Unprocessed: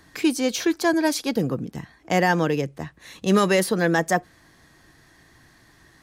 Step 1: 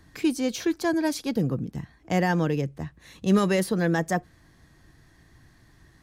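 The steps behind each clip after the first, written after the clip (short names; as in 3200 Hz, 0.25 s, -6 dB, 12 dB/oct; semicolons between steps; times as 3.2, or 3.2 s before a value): low shelf 200 Hz +12 dB; gain -6.5 dB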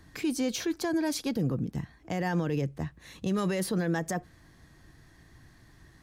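limiter -21 dBFS, peak gain reduction 10 dB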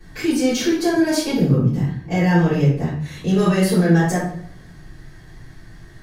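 reverb RT60 0.60 s, pre-delay 3 ms, DRR -14 dB; gain -5.5 dB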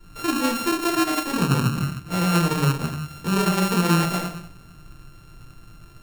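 sample sorter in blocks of 32 samples; gain -4.5 dB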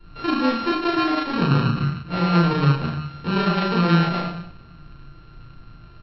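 doubler 35 ms -3 dB; downsampling 11025 Hz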